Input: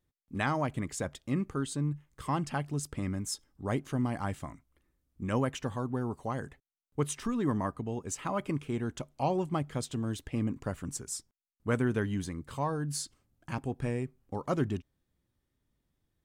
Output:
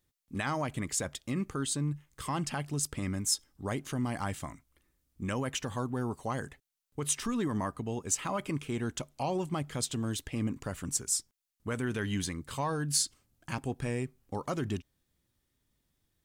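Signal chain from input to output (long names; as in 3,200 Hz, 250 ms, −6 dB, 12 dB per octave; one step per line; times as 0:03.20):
0:11.83–0:13.03: dynamic equaliser 2,800 Hz, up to +4 dB, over −50 dBFS, Q 0.8
brickwall limiter −24 dBFS, peak gain reduction 8 dB
high-shelf EQ 2,100 Hz +8.5 dB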